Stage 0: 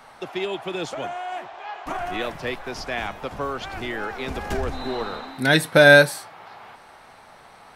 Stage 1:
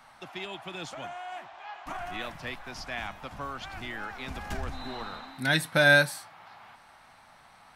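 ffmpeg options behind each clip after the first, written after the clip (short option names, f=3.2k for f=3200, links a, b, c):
-af "equalizer=f=430:t=o:w=0.83:g=-11,volume=-6dB"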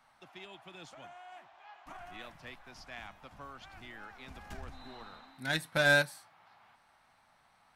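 -af "aeval=exprs='0.376*(cos(1*acos(clip(val(0)/0.376,-1,1)))-cos(1*PI/2))+0.0266*(cos(7*acos(clip(val(0)/0.376,-1,1)))-cos(7*PI/2))':c=same,volume=-5.5dB"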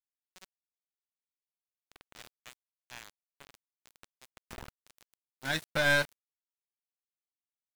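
-af "aeval=exprs='val(0)*gte(abs(val(0)),0.0126)':c=same,aeval=exprs='(tanh(12.6*val(0)+0.5)-tanh(0.5))/12.6':c=same,volume=3dB"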